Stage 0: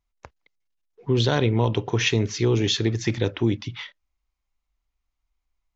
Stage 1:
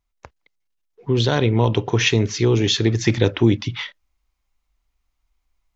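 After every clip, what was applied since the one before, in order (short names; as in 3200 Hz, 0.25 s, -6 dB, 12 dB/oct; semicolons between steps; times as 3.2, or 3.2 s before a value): vocal rider 0.5 s; gain +4.5 dB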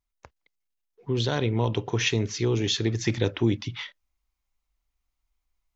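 high shelf 6300 Hz +4.5 dB; gain -7.5 dB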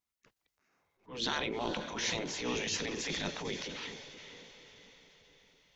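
diffused feedback echo 0.45 s, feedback 53%, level -15 dB; spectral gate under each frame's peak -10 dB weak; transient shaper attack -10 dB, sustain +4 dB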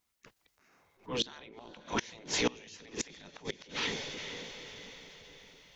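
flipped gate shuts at -26 dBFS, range -25 dB; gain +9 dB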